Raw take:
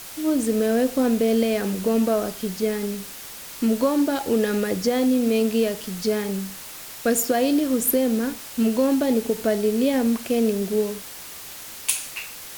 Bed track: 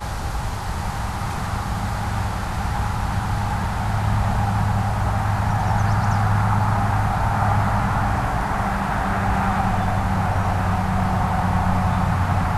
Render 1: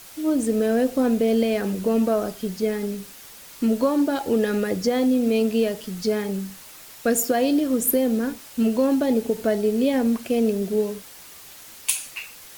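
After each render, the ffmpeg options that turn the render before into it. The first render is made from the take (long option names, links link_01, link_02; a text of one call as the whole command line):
ffmpeg -i in.wav -af "afftdn=noise_reduction=6:noise_floor=-38" out.wav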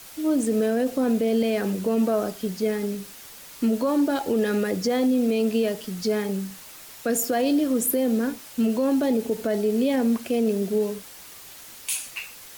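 ffmpeg -i in.wav -filter_complex "[0:a]acrossover=split=100|450|3700[link_01][link_02][link_03][link_04];[link_01]acompressor=threshold=-58dB:ratio=6[link_05];[link_05][link_02][link_03][link_04]amix=inputs=4:normalize=0,alimiter=limit=-15dB:level=0:latency=1:release=13" out.wav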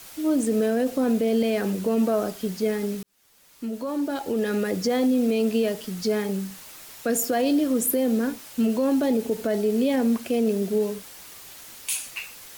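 ffmpeg -i in.wav -filter_complex "[0:a]asplit=2[link_01][link_02];[link_01]atrim=end=3.03,asetpts=PTS-STARTPTS,afade=type=out:start_time=3.026:duration=0.004:curve=hsin[link_03];[link_02]atrim=start=3.03,asetpts=PTS-STARTPTS,afade=type=in:duration=1.78[link_04];[link_03][link_04]concat=n=2:v=0:a=1" out.wav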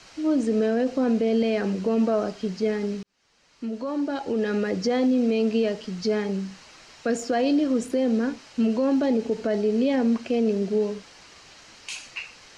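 ffmpeg -i in.wav -af "lowpass=frequency=5900:width=0.5412,lowpass=frequency=5900:width=1.3066,bandreject=frequency=3500:width=11" out.wav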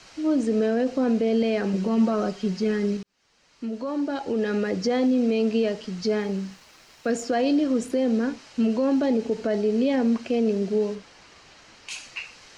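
ffmpeg -i in.wav -filter_complex "[0:a]asettb=1/sr,asplit=3[link_01][link_02][link_03];[link_01]atrim=end=1.734[link_04];[link_02]atrim=start=1.73:end=2.97,asetpts=PTS-STARTPTS,afade=type=in:duration=0.004:curve=qsin,afade=type=out:start_time=1.236:duration=0.004:curve=qsin,aecho=1:1:5.4:0.64,atrim=end_sample=54684[link_05];[link_03]atrim=start=2.966[link_06];[link_04][link_05]acrossfade=duration=0.004:curve1=hsin:curve2=qsin[link_07];[link_07][link_06]acrossfade=duration=0.004:curve1=qsin:curve2=hsin,asettb=1/sr,asplit=3[link_08][link_09][link_10];[link_08]atrim=end=6.204[link_11];[link_09]atrim=start=6.2:end=7.12,asetpts=PTS-STARTPTS,afade=type=in:duration=0.004:curve=qsin,afade=type=out:start_time=0.916:duration=0.004:curve=qsin,aeval=exprs='sgn(val(0))*max(abs(val(0))-0.00168,0)':channel_layout=same[link_12];[link_10]atrim=start=7.116[link_13];[link_11][link_12]acrossfade=duration=0.004:curve1=hsin:curve2=qsin[link_14];[link_14][link_13]acrossfade=duration=0.004:curve1=qsin:curve2=hsin,asettb=1/sr,asplit=3[link_15][link_16][link_17];[link_15]atrim=end=10.954[link_18];[link_16]atrim=start=10.95:end=11.91,asetpts=PTS-STARTPTS,afade=type=in:duration=0.004:curve=qsin,afade=type=out:start_time=0.956:duration=0.004:curve=qsin,highshelf=frequency=3800:gain=-6[link_19];[link_17]atrim=start=11.906[link_20];[link_18][link_19]acrossfade=duration=0.004:curve1=hsin:curve2=qsin[link_21];[link_21][link_20]acrossfade=duration=0.004:curve1=qsin:curve2=hsin" out.wav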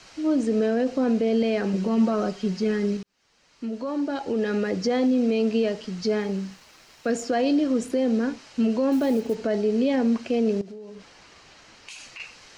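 ffmpeg -i in.wav -filter_complex "[0:a]asettb=1/sr,asplit=3[link_01][link_02][link_03];[link_01]atrim=end=8.924[link_04];[link_02]atrim=start=8.92:end=9.35,asetpts=PTS-STARTPTS,afade=type=in:duration=0.004:curve=qsin,afade=type=out:start_time=0.426:duration=0.004:curve=qsin,acrusher=bits=7:mode=log:mix=0:aa=0.000001[link_05];[link_03]atrim=start=9.346[link_06];[link_04][link_05]acrossfade=duration=0.004:curve1=hsin:curve2=qsin[link_07];[link_07][link_06]acrossfade=duration=0.004:curve1=qsin:curve2=hsin,asettb=1/sr,asplit=3[link_08][link_09][link_10];[link_08]atrim=end=10.614[link_11];[link_09]atrim=start=10.61:end=12.2,asetpts=PTS-STARTPTS,afade=type=in:duration=0.004:curve=qsin,afade=type=out:start_time=1.586:duration=0.004:curve=qsin,acompressor=threshold=-36dB:ratio=20:attack=3.2:release=140:knee=1:detection=peak[link_12];[link_10]atrim=start=12.196[link_13];[link_11][link_12]acrossfade=duration=0.004:curve1=hsin:curve2=qsin[link_14];[link_14][link_13]acrossfade=duration=0.004:curve1=qsin:curve2=hsin" out.wav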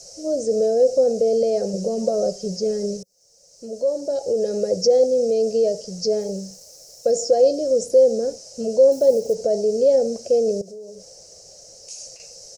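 ffmpeg -i in.wav -filter_complex "[0:a]acrossover=split=6300[link_01][link_02];[link_02]acompressor=threshold=-60dB:ratio=4:attack=1:release=60[link_03];[link_01][link_03]amix=inputs=2:normalize=0,firequalizer=gain_entry='entry(180,0);entry(250,-13);entry(530,14);entry(990,-19);entry(2400,-18);entry(3400,-14);entry(5400,15)':delay=0.05:min_phase=1" out.wav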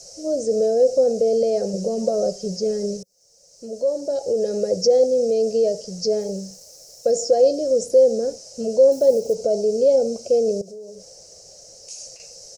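ffmpeg -i in.wav -filter_complex "[0:a]asettb=1/sr,asplit=3[link_01][link_02][link_03];[link_01]atrim=end=9.204[link_04];[link_02]atrim=start=9.2:end=10.7,asetpts=PTS-STARTPTS,afade=type=in:duration=0.004:curve=qsin,afade=type=out:start_time=1.496:duration=0.004:curve=qsin,asuperstop=centerf=1800:order=20:qfactor=3.8[link_05];[link_03]atrim=start=10.696[link_06];[link_04][link_05]acrossfade=duration=0.004:curve1=hsin:curve2=qsin[link_07];[link_07][link_06]acrossfade=duration=0.004:curve1=qsin:curve2=hsin" out.wav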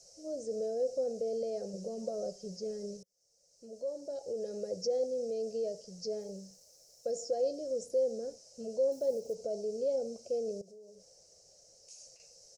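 ffmpeg -i in.wav -af "volume=-16dB" out.wav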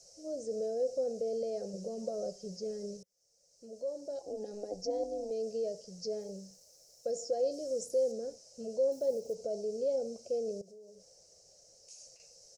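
ffmpeg -i in.wav -filter_complex "[0:a]asettb=1/sr,asplit=3[link_01][link_02][link_03];[link_01]atrim=end=4.214[link_04];[link_02]atrim=start=4.21:end=5.31,asetpts=PTS-STARTPTS,afade=type=in:duration=0.004:curve=qsin,afade=type=out:start_time=1.096:duration=0.004:curve=qsin,tremolo=f=210:d=0.667[link_05];[link_03]atrim=start=5.306[link_06];[link_04][link_05]acrossfade=duration=0.004:curve1=hsin:curve2=qsin[link_07];[link_07][link_06]acrossfade=duration=0.004:curve1=qsin:curve2=hsin,asettb=1/sr,asplit=3[link_08][link_09][link_10];[link_08]atrim=end=7.514[link_11];[link_09]atrim=start=7.51:end=8.12,asetpts=PTS-STARTPTS,afade=type=in:duration=0.004:curve=qsin,afade=type=out:start_time=0.606:duration=0.004:curve=qsin,highshelf=frequency=7400:gain=11.5[link_12];[link_10]atrim=start=8.116[link_13];[link_11][link_12]acrossfade=duration=0.004:curve1=hsin:curve2=qsin[link_14];[link_14][link_13]acrossfade=duration=0.004:curve1=qsin:curve2=hsin" out.wav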